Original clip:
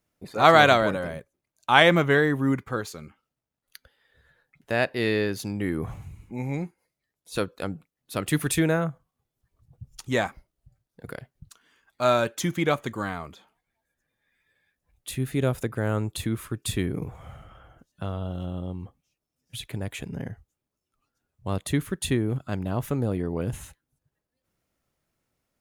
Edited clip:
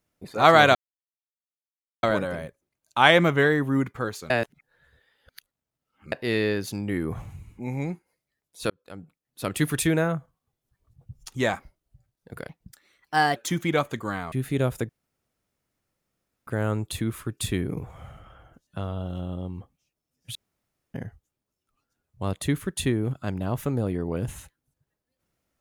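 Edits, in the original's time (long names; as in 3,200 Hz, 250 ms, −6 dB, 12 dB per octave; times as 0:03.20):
0:00.75: splice in silence 1.28 s
0:03.02–0:04.84: reverse
0:07.42–0:08.21: fade in
0:11.21–0:12.29: play speed 124%
0:13.25–0:15.15: remove
0:15.72: splice in room tone 1.58 s
0:19.60–0:20.19: fill with room tone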